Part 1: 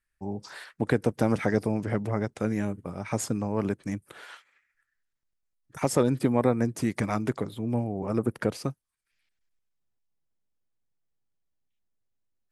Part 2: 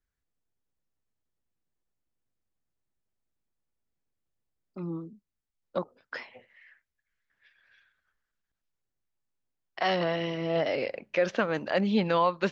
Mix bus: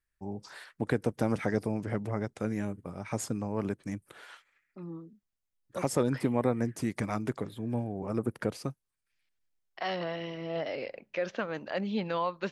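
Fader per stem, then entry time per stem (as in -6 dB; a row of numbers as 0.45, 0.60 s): -4.5, -6.5 dB; 0.00, 0.00 s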